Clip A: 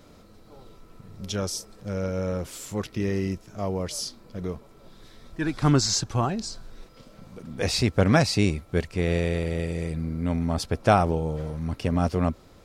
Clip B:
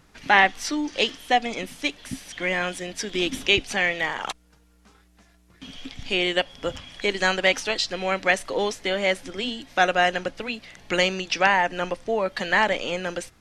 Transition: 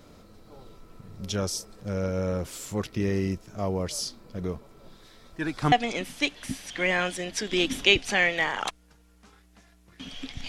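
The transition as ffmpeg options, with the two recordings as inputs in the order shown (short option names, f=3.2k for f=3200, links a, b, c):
-filter_complex "[0:a]asettb=1/sr,asplit=3[a][b][c];[a]atrim=end=4.964[d];[b]atrim=start=4.96:end=5.72,asetpts=PTS-STARTPTS,afade=t=in:d=0.004:c=qsin,afade=t=out:st=0.756:d=0.004:c=qsin,lowshelf=f=300:g=-7[e];[c]atrim=start=5.716[f];[d][e]acrossfade=d=0.004:c1=hsin:c2=qsin[g];[g][f]acrossfade=d=0.004:c1=qsin:c2=hsin,apad=whole_dur=10.48,atrim=end=10.48,atrim=end=5.722[h];[1:a]atrim=start=1.338:end=6.1[i];[h][i]acrossfade=d=0.004:c1=hsin:c2=hsin"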